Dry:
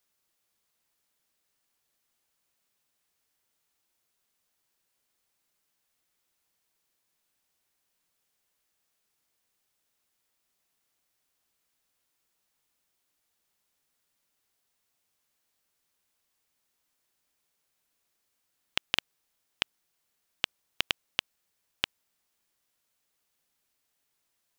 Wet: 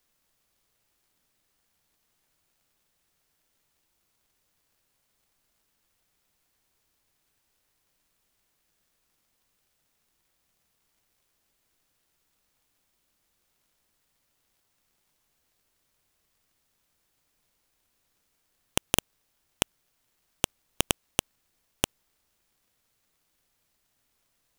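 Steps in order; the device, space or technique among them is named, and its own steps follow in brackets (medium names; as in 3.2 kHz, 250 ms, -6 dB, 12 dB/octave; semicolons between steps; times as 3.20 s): record under a worn stylus (tracing distortion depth 0.15 ms; crackle; pink noise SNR 39 dB); trim +3 dB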